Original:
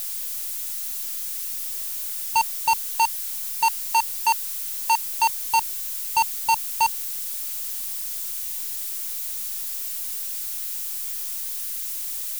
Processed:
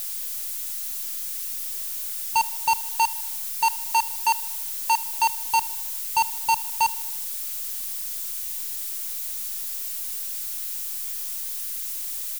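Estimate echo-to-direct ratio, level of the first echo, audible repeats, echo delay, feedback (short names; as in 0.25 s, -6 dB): -19.0 dB, -21.0 dB, 3, 78 ms, 58%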